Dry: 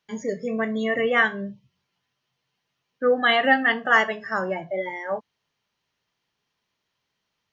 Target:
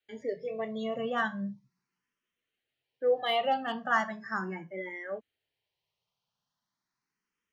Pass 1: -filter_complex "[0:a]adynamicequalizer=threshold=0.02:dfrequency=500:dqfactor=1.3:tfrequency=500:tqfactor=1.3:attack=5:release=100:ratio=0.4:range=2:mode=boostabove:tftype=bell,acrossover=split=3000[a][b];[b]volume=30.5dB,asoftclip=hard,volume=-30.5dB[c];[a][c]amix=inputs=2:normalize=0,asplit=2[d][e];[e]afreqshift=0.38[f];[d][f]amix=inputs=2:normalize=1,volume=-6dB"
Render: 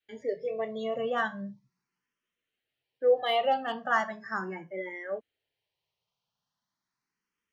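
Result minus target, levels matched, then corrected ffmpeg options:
250 Hz band -4.5 dB
-filter_complex "[0:a]adynamicequalizer=threshold=0.02:dfrequency=200:dqfactor=1.3:tfrequency=200:tqfactor=1.3:attack=5:release=100:ratio=0.4:range=2:mode=boostabove:tftype=bell,acrossover=split=3000[a][b];[b]volume=30.5dB,asoftclip=hard,volume=-30.5dB[c];[a][c]amix=inputs=2:normalize=0,asplit=2[d][e];[e]afreqshift=0.38[f];[d][f]amix=inputs=2:normalize=1,volume=-6dB"

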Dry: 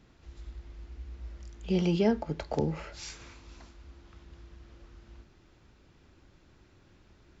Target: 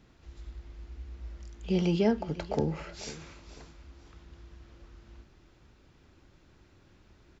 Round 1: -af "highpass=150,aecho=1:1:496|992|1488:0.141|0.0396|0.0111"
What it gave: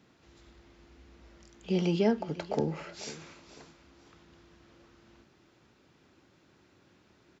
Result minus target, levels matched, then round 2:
125 Hz band -3.0 dB
-af "aecho=1:1:496|992|1488:0.141|0.0396|0.0111"

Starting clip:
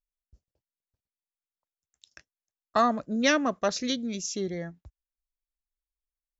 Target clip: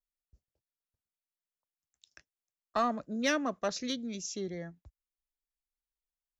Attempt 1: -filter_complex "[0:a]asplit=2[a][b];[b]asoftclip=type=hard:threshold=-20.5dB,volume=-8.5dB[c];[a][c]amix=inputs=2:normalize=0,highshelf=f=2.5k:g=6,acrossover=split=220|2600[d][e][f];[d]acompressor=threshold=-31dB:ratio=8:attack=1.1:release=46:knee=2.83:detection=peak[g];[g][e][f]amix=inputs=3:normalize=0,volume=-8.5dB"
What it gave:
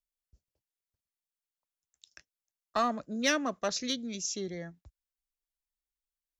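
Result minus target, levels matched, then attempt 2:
4000 Hz band +2.5 dB
-filter_complex "[0:a]asplit=2[a][b];[b]asoftclip=type=hard:threshold=-20.5dB,volume=-8.5dB[c];[a][c]amix=inputs=2:normalize=0,acrossover=split=220|2600[d][e][f];[d]acompressor=threshold=-31dB:ratio=8:attack=1.1:release=46:knee=2.83:detection=peak[g];[g][e][f]amix=inputs=3:normalize=0,volume=-8.5dB"

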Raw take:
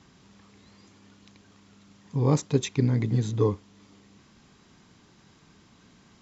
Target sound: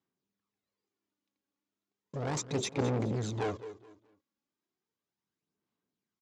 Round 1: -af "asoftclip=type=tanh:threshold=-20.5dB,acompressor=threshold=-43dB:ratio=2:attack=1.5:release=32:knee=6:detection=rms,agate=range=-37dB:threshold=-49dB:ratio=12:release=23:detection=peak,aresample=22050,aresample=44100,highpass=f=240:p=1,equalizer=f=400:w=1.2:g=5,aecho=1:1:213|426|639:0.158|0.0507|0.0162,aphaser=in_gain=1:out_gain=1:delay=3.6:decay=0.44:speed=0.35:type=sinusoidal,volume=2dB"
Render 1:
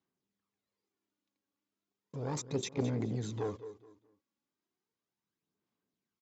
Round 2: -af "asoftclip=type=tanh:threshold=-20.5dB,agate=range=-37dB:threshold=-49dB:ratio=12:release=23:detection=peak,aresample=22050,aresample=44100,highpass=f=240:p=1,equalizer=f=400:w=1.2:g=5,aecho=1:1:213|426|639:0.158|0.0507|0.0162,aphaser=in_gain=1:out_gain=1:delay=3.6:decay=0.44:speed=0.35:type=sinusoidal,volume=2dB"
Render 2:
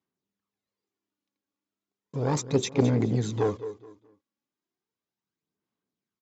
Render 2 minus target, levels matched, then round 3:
soft clip: distortion -7 dB
-af "asoftclip=type=tanh:threshold=-32dB,agate=range=-37dB:threshold=-49dB:ratio=12:release=23:detection=peak,aresample=22050,aresample=44100,highpass=f=240:p=1,equalizer=f=400:w=1.2:g=5,aecho=1:1:213|426|639:0.158|0.0507|0.0162,aphaser=in_gain=1:out_gain=1:delay=3.6:decay=0.44:speed=0.35:type=sinusoidal,volume=2dB"

